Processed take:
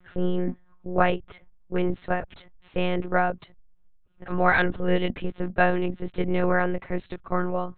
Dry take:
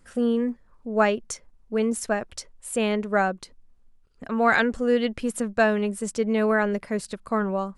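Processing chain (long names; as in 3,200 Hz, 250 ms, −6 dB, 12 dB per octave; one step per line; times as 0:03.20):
one-pitch LPC vocoder at 8 kHz 180 Hz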